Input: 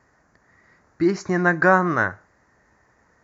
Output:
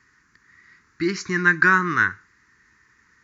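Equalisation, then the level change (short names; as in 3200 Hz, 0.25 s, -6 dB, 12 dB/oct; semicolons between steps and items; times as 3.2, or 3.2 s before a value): Butterworth band-stop 650 Hz, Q 0.88; bell 3200 Hz +12 dB 2.7 oct; -3.5 dB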